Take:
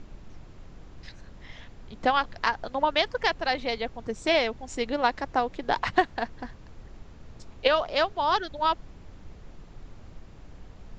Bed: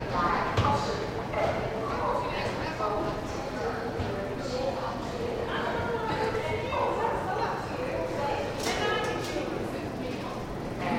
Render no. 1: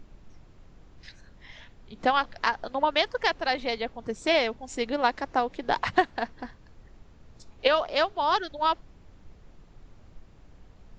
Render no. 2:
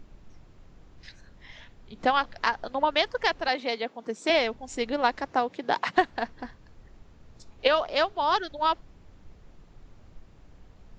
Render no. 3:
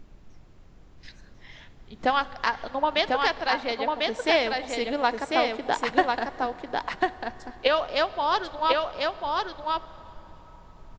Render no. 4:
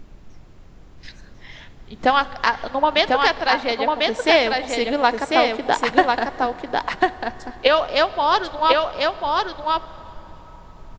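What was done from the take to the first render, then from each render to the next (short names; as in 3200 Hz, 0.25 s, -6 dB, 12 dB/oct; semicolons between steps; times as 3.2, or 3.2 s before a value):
noise print and reduce 6 dB
3.48–4.3 HPF 200 Hz 24 dB/oct; 5.26–5.96 HPF 76 Hz -> 180 Hz 24 dB/oct
on a send: echo 1.046 s -3 dB; on the sum: plate-style reverb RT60 4.7 s, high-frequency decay 0.65×, DRR 16.5 dB
gain +6.5 dB; limiter -1 dBFS, peak gain reduction 1 dB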